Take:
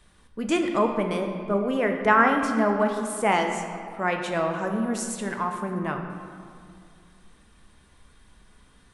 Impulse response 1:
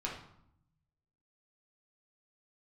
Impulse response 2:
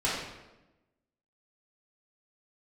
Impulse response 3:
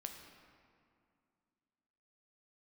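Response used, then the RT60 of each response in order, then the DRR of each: 3; 0.70, 1.0, 2.3 seconds; −4.0, −8.5, 3.5 decibels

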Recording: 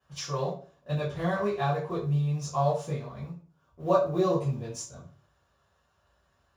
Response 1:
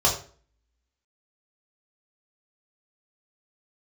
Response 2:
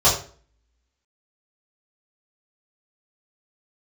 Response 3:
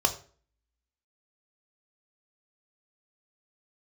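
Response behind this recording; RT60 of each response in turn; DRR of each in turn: 2; 0.45, 0.45, 0.45 seconds; −4.5, −10.5, 4.5 decibels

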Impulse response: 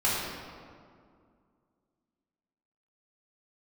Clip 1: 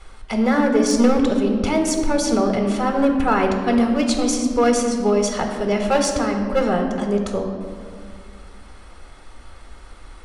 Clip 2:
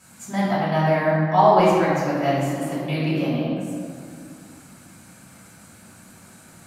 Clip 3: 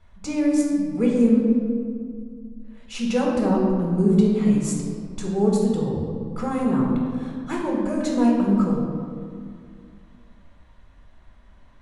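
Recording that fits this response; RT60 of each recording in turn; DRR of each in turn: 2; 2.2, 2.2, 2.2 seconds; 3.0, −8.0, −2.5 decibels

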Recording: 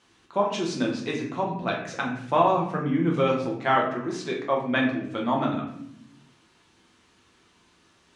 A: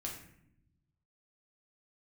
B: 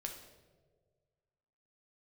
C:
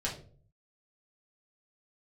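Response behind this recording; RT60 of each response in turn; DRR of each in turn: A; 0.70, 1.6, 0.45 seconds; −2.0, 2.0, −5.5 decibels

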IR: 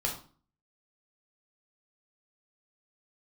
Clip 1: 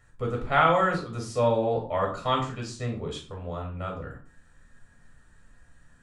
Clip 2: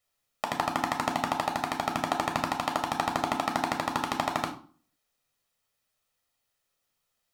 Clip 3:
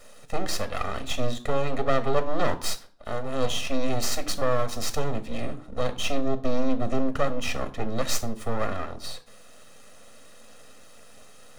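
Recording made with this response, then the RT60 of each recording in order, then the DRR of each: 1; 0.40, 0.40, 0.40 seconds; −0.5, 4.0, 10.0 decibels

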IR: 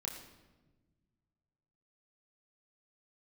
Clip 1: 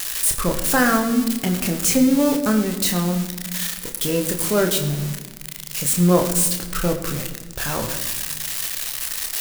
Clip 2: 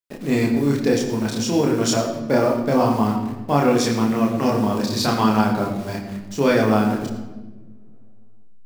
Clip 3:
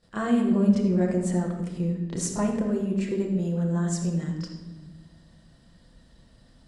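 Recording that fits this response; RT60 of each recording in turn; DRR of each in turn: 2; 1.3, 1.2, 1.2 seconds; 3.5, −1.5, −11.5 decibels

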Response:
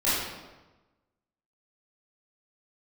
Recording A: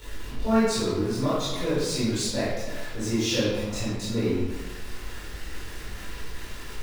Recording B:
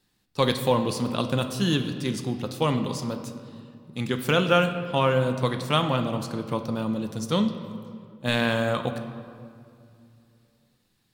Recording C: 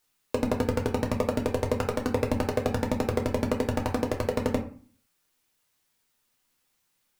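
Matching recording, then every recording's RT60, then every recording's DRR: A; 1.1, 2.5, 0.45 seconds; −12.0, 6.5, 1.5 decibels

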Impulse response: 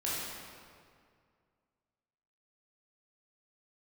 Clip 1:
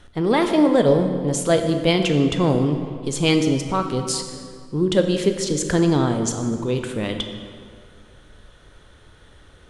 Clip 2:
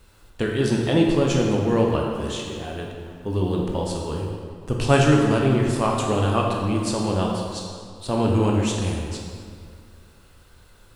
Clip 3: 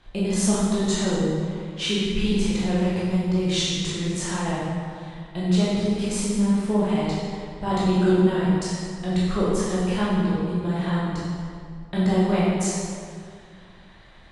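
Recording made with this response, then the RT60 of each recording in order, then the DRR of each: 3; 2.1, 2.1, 2.1 seconds; 5.5, −1.0, −8.0 decibels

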